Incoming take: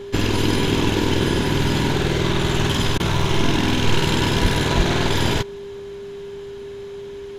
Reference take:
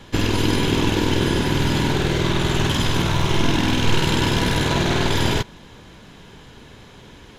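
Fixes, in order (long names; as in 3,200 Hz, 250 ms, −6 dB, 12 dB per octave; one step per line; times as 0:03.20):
notch filter 400 Hz, Q 30
high-pass at the plosives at 0:04.41/0:04.76
repair the gap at 0:02.98, 17 ms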